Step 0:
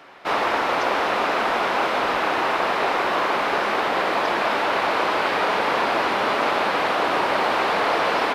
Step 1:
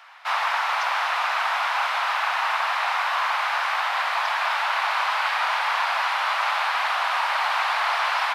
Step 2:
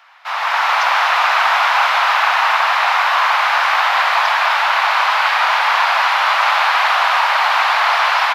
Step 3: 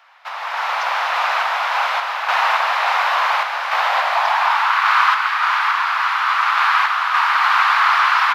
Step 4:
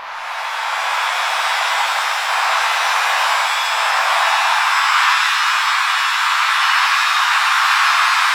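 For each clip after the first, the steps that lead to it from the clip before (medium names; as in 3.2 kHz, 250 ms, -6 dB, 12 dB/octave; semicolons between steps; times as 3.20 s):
inverse Chebyshev high-pass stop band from 410 Hz, stop band 40 dB
peaking EQ 8.9 kHz -7.5 dB 0.3 oct; level rider gain up to 11.5 dB
random-step tremolo; high-pass sweep 370 Hz -> 1.2 kHz, 3.63–4.79 s; trim -3 dB
reverse echo 884 ms -7 dB; pitch-shifted reverb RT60 1.3 s, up +7 st, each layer -2 dB, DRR -0.5 dB; trim -4.5 dB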